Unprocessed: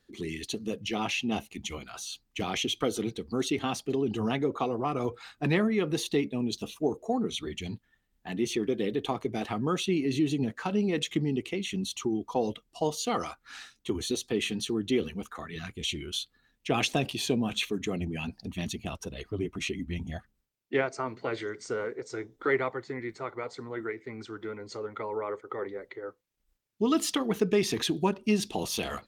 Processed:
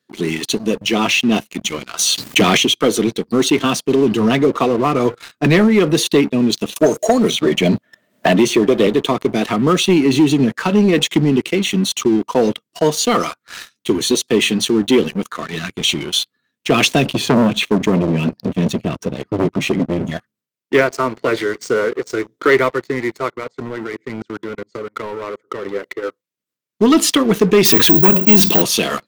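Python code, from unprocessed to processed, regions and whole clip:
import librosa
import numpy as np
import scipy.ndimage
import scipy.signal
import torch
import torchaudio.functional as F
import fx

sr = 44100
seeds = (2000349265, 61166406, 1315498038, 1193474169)

y = fx.chain(x, sr, fx.leveller(passes=2),
    fx.pre_swell(db_per_s=61.0), at=(1.99, 2.57))
y = fx.chain(y, sr, fx.peak_eq(hz=620.0, db=15.0, octaves=0.37),
    fx.band_squash(depth_pct=100), at=(6.76, 8.87))
y = fx.chain(y, sr, fx.highpass(hz=62.0, slope=24),
    fx.tilt_eq(slope=-2.5),
    fx.transformer_sat(knee_hz=900.0), at=(17.05, 20.06))
y = fx.chain(y, sr, fx.peak_eq(hz=150.0, db=6.0, octaves=1.3),
    fx.level_steps(step_db=20), at=(23.3, 25.69))
y = fx.chain(y, sr, fx.hum_notches(base_hz=60, count=3),
    fx.resample_bad(factor=2, down='filtered', up='zero_stuff'),
    fx.env_flatten(amount_pct=50), at=(27.65, 28.62))
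y = scipy.signal.sosfilt(scipy.signal.butter(4, 130.0, 'highpass', fs=sr, output='sos'), y)
y = fx.notch(y, sr, hz=800.0, q=5.0)
y = fx.leveller(y, sr, passes=3)
y = y * librosa.db_to_amplitude(4.5)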